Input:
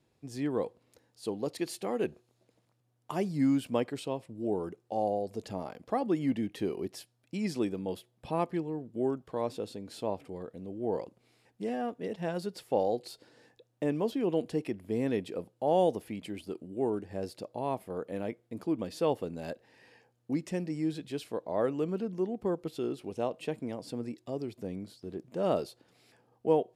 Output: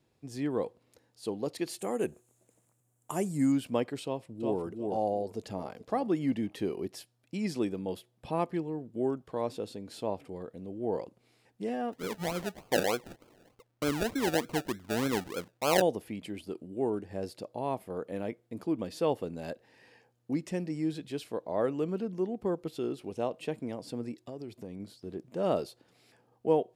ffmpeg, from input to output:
ffmpeg -i in.wav -filter_complex "[0:a]asettb=1/sr,asplit=3[link_01][link_02][link_03];[link_01]atrim=end=1.794[link_04];[link_02]atrim=start=1.79:end=3.52,asetpts=PTS-STARTPTS,afade=type=in:duration=0.004:curve=qsin,afade=type=out:start_time=1.726:duration=0.004:curve=qsin,highshelf=frequency=6000:width_type=q:width=3:gain=9[link_05];[link_03]atrim=start=3.516[link_06];[link_04][link_05]acrossfade=duration=0.004:curve1=hsin:curve2=qsin[link_07];[link_07][link_06]acrossfade=duration=0.004:curve1=qsin:curve2=hsin,asplit=2[link_08][link_09];[link_09]afade=type=in:start_time=4.04:duration=0.01,afade=type=out:start_time=4.6:duration=0.01,aecho=0:1:360|720|1080:0.668344|0.133669|0.0267338[link_10];[link_08][link_10]amix=inputs=2:normalize=0,asplit=2[link_11][link_12];[link_12]afade=type=in:start_time=5.15:duration=0.01,afade=type=out:start_time=5.74:duration=0.01,aecho=0:1:430|860:0.149624|0.0374059[link_13];[link_11][link_13]amix=inputs=2:normalize=0,asplit=3[link_14][link_15][link_16];[link_14]afade=type=out:start_time=11.92:duration=0.02[link_17];[link_15]acrusher=samples=33:mix=1:aa=0.000001:lfo=1:lforange=19.8:lforate=3.3,afade=type=in:start_time=11.92:duration=0.02,afade=type=out:start_time=15.8:duration=0.02[link_18];[link_16]afade=type=in:start_time=15.8:duration=0.02[link_19];[link_17][link_18][link_19]amix=inputs=3:normalize=0,asettb=1/sr,asplit=3[link_20][link_21][link_22];[link_20]atrim=end=24.174[link_23];[link_21]atrim=start=24.17:end=24.8,asetpts=PTS-STARTPTS,afade=type=in:duration=0.004:curve=qsin,afade=type=out:start_time=0.626:duration=0.004:curve=qsin,acompressor=threshold=-38dB:ratio=3:attack=3.2:release=140:knee=1:detection=peak[link_24];[link_22]atrim=start=24.796[link_25];[link_23][link_24]acrossfade=duration=0.004:curve1=hsin:curve2=qsin[link_26];[link_26][link_25]acrossfade=duration=0.004:curve1=qsin:curve2=hsin" out.wav

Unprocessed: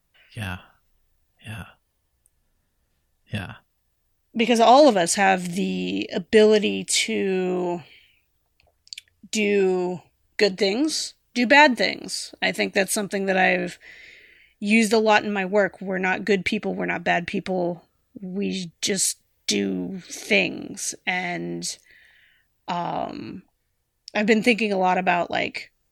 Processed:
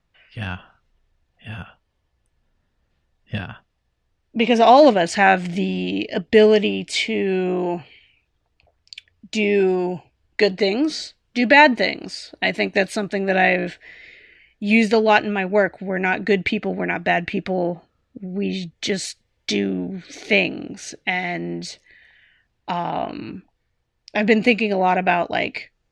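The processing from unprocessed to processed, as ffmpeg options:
ffmpeg -i in.wav -filter_complex "[0:a]asettb=1/sr,asplit=3[link_01][link_02][link_03];[link_01]atrim=end=5.124[link_04];[link_02]atrim=start=5.12:end=6.21,asetpts=PTS-STARTPTS,afade=type=in:duration=0.004:curve=qsin,afade=type=out:start_time=1.086:duration=0.004:curve=qsin,equalizer=frequency=1300:width=1.6:gain=5[link_05];[link_03]atrim=start=6.206[link_06];[link_04][link_05]acrossfade=duration=0.004:curve1=hsin:curve2=qsin[link_07];[link_07][link_06]acrossfade=duration=0.004:curve1=qsin:curve2=hsin,asettb=1/sr,asplit=3[link_08][link_09][link_10];[link_08]atrim=end=22.904[link_11];[link_09]atrim=start=22.9:end=23.32,asetpts=PTS-STARTPTS,afade=type=in:duration=0.004:curve=qsin,afade=type=out:start_time=0.416:duration=0.004:curve=qsin,highshelf=frequency=5400:width_type=q:width=1.5:gain=-12[link_12];[link_10]atrim=start=23.316[link_13];[link_11][link_12]acrossfade=duration=0.004:curve1=hsin:curve2=qsin[link_14];[link_14][link_13]acrossfade=duration=0.004:curve1=qsin:curve2=hsin,lowpass=4000,volume=2.5dB" out.wav

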